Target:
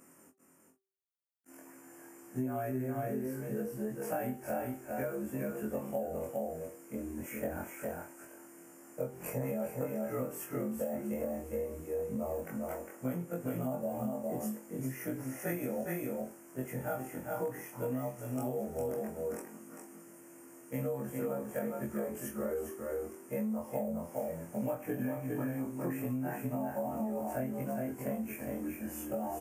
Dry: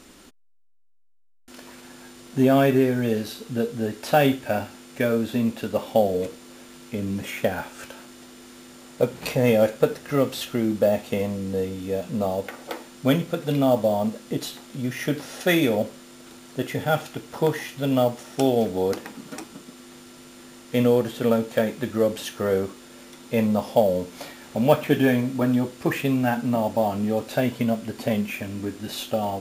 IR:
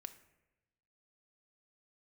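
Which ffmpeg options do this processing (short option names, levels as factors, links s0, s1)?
-filter_complex "[0:a]afftfilt=real='re':imag='-im':win_size=2048:overlap=0.75,asuperstop=centerf=3900:order=4:qfactor=0.86,highshelf=f=8900:g=9.5,bandreject=f=387.4:t=h:w=4,bandreject=f=774.8:t=h:w=4,bandreject=f=1162.2:t=h:w=4,acrossover=split=100|700|7700[s0][s1][s2][s3];[s0]aeval=exprs='val(0)*gte(abs(val(0)),0.00158)':c=same[s4];[s4][s1][s2][s3]amix=inputs=4:normalize=0,asplit=2[s5][s6];[s6]adelay=23,volume=0.251[s7];[s5][s7]amix=inputs=2:normalize=0,aecho=1:1:406|448:0.562|0.224,acompressor=threshold=0.0562:ratio=12,volume=0.473"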